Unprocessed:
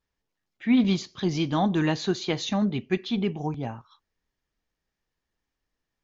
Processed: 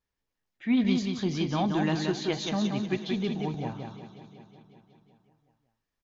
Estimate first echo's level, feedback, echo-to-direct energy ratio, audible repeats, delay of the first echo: -4.5 dB, no regular repeats, -3.5 dB, 8, 179 ms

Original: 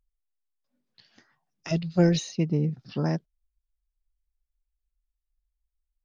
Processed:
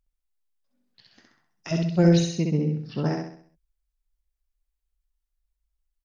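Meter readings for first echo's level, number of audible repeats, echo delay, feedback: -3.0 dB, 5, 65 ms, 43%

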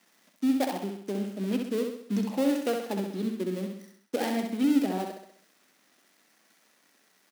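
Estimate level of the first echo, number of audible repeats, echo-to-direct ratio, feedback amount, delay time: -5.0 dB, 5, -4.0 dB, 49%, 65 ms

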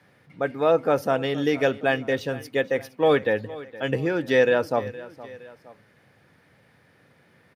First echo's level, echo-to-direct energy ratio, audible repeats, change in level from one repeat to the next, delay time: -18.0 dB, -17.0 dB, 2, -5.5 dB, 466 ms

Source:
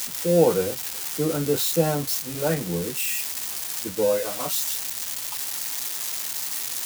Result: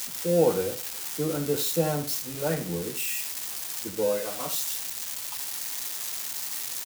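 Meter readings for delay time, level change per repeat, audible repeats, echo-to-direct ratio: 73 ms, -13.0 dB, 2, -11.5 dB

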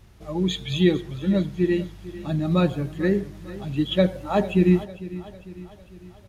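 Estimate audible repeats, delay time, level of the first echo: 4, 450 ms, -16.5 dB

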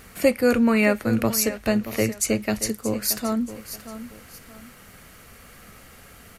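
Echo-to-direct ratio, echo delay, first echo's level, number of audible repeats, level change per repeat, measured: -12.5 dB, 627 ms, -13.0 dB, 2, -9.5 dB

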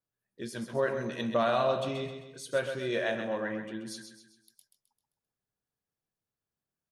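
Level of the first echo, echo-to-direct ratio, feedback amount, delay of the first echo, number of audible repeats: -8.0 dB, -7.0 dB, 45%, 131 ms, 4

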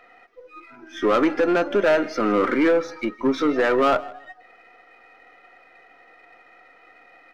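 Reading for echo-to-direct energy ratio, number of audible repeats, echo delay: -20.5 dB, 2, 158 ms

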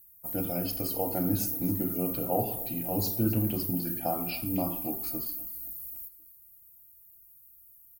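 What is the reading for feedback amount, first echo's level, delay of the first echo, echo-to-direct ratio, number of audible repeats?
47%, -18.0 dB, 263 ms, -17.0 dB, 3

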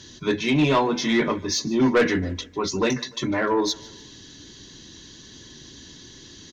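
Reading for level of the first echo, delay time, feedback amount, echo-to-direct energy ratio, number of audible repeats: -21.5 dB, 149 ms, 49%, -20.5 dB, 3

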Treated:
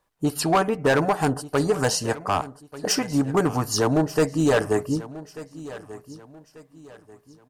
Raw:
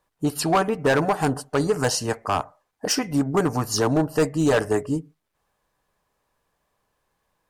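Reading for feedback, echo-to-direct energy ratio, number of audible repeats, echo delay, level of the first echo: 34%, -16.5 dB, 2, 1189 ms, -17.0 dB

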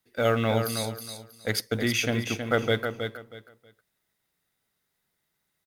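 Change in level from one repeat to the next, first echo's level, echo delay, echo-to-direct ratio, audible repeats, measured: -13.0 dB, -7.0 dB, 319 ms, -7.0 dB, 3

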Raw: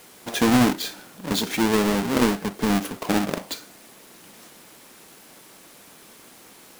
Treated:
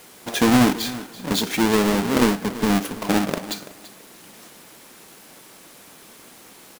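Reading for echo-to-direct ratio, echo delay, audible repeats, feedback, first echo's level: -16.5 dB, 335 ms, 2, 19%, -16.5 dB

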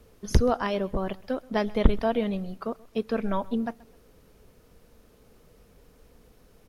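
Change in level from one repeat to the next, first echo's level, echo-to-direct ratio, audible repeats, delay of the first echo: -10.5 dB, -23.0 dB, -22.5 dB, 2, 130 ms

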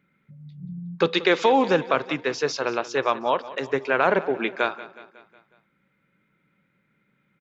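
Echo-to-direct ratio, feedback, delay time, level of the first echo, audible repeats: -15.5 dB, 54%, 183 ms, -17.0 dB, 4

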